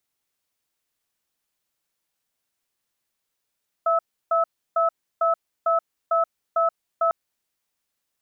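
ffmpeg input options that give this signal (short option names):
-f lavfi -i "aevalsrc='0.1*(sin(2*PI*666*t)+sin(2*PI*1300*t))*clip(min(mod(t,0.45),0.13-mod(t,0.45))/0.005,0,1)':d=3.25:s=44100"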